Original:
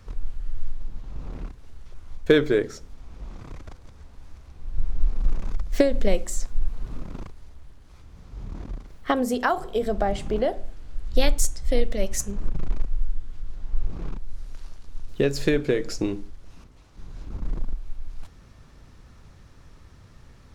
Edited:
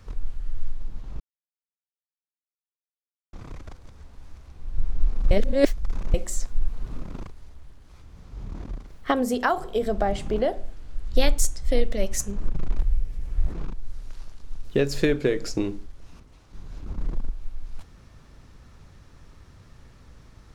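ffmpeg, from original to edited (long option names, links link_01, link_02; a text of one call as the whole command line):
ffmpeg -i in.wav -filter_complex "[0:a]asplit=7[link_01][link_02][link_03][link_04][link_05][link_06][link_07];[link_01]atrim=end=1.2,asetpts=PTS-STARTPTS,afade=type=out:start_time=1.196:duration=0.004:curve=hsin[link_08];[link_02]atrim=start=1.2:end=3.33,asetpts=PTS-STARTPTS,volume=0[link_09];[link_03]atrim=start=3.33:end=5.312,asetpts=PTS-STARTPTS,afade=type=in:duration=0.004:curve=hsin[link_10];[link_04]atrim=start=5.308:end=6.142,asetpts=PTS-STARTPTS,areverse[link_11];[link_05]atrim=start=6.138:end=12.784[link_12];[link_06]atrim=start=12.78:end=13.97,asetpts=PTS-STARTPTS,asetrate=70119,aresample=44100[link_13];[link_07]atrim=start=13.966[link_14];[link_08][link_09][link_10]concat=n=3:v=0:a=1[link_15];[link_15][link_11]acrossfade=duration=0.004:curve1=hsin:curve2=hsin[link_16];[link_16][link_12]acrossfade=duration=0.004:curve1=hsin:curve2=hsin[link_17];[link_17][link_13]acrossfade=duration=0.004:curve1=hsin:curve2=hsin[link_18];[link_18][link_14]acrossfade=duration=0.004:curve1=hsin:curve2=hsin" out.wav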